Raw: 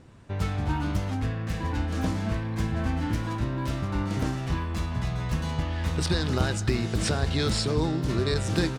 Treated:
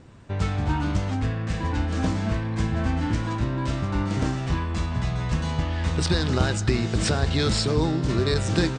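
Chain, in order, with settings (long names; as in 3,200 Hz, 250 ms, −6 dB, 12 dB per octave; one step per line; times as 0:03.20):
Butterworth low-pass 9,000 Hz 72 dB per octave
level +3 dB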